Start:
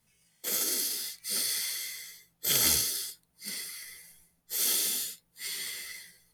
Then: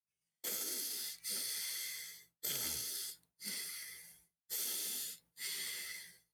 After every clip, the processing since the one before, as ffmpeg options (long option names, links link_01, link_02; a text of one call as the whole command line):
ffmpeg -i in.wav -af "highpass=58,agate=range=-33dB:threshold=-55dB:ratio=3:detection=peak,acompressor=threshold=-34dB:ratio=5,volume=-3.5dB" out.wav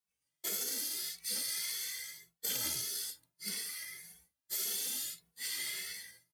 ffmpeg -i in.wav -filter_complex "[0:a]asplit=2[link_01][link_02];[link_02]adelay=2.3,afreqshift=1.7[link_03];[link_01][link_03]amix=inputs=2:normalize=1,volume=6.5dB" out.wav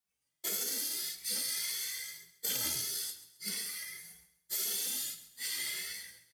ffmpeg -i in.wav -af "aecho=1:1:134|268|402:0.178|0.064|0.023,volume=1.5dB" out.wav